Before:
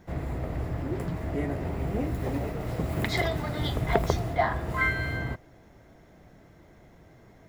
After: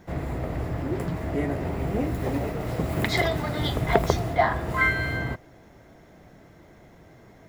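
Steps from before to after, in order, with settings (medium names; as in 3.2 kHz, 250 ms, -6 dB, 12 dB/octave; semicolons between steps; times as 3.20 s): bass shelf 91 Hz -5 dB; trim +4 dB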